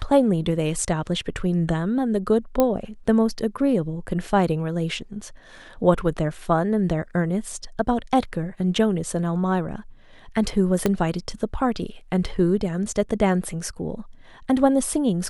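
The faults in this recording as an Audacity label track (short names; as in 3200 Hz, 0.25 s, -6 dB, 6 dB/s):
2.600000	2.600000	pop -6 dBFS
10.860000	10.860000	pop -7 dBFS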